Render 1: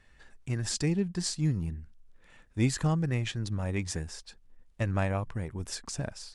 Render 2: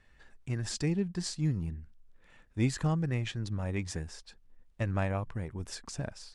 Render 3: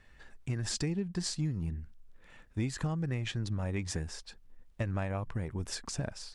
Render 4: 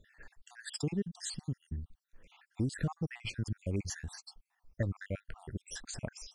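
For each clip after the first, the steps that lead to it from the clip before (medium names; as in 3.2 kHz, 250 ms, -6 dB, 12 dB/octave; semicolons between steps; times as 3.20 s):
treble shelf 6.3 kHz -6 dB; trim -2 dB
compression 6:1, threshold -33 dBFS, peak gain reduction 10 dB; trim +3.5 dB
random holes in the spectrogram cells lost 64%; trim +1 dB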